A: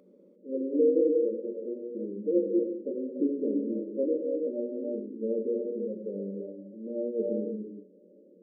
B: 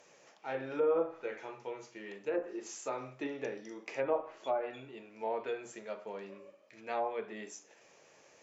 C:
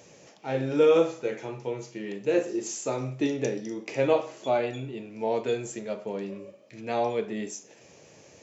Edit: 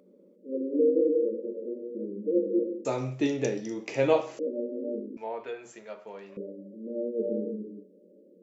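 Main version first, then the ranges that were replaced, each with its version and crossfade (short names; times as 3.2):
A
2.85–4.39 from C
5.17–6.37 from B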